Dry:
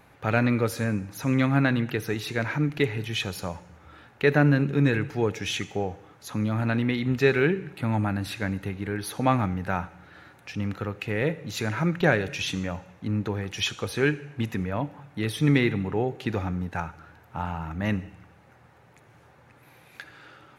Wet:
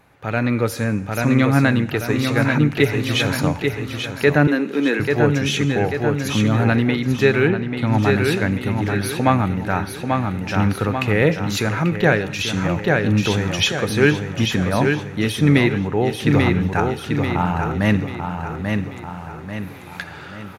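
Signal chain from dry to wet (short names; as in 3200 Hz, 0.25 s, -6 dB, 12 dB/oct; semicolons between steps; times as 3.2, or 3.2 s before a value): feedback echo 0.839 s, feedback 45%, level -6 dB; AGC gain up to 11 dB; 4.47–5 steep high-pass 220 Hz 36 dB/oct; 7.48–7.97 high shelf 7600 Hz -> 11000 Hz -12 dB; AC-3 320 kbps 44100 Hz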